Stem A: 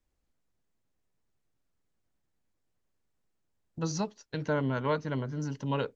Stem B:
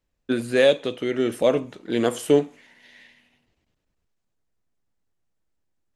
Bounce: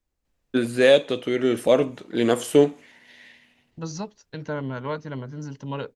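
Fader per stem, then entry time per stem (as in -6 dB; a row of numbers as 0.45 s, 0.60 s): -0.5 dB, +1.5 dB; 0.00 s, 0.25 s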